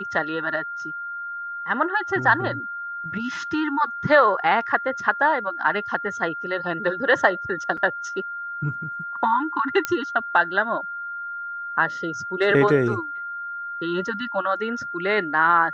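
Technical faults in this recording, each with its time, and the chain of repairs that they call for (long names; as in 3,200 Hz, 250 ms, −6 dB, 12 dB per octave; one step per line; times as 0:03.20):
whistle 1,400 Hz −29 dBFS
0:07.77–0:07.78: drop-out 5.4 ms
0:09.85: click −8 dBFS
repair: click removal
notch filter 1,400 Hz, Q 30
repair the gap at 0:07.77, 5.4 ms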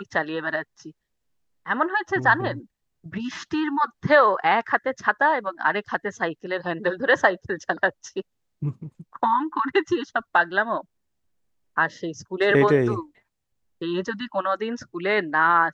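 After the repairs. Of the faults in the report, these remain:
none of them is left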